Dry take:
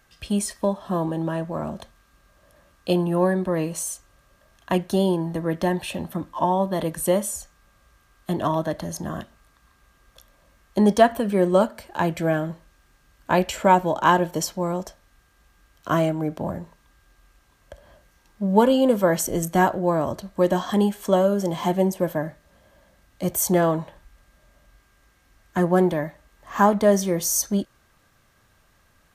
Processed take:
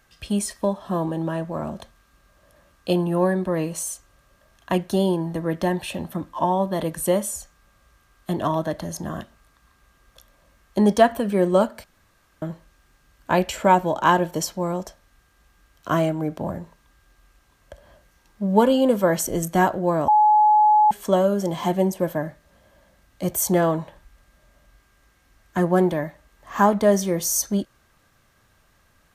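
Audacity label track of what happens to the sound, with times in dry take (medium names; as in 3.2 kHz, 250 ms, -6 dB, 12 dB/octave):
11.840000	12.420000	room tone
20.080000	20.910000	bleep 848 Hz -12 dBFS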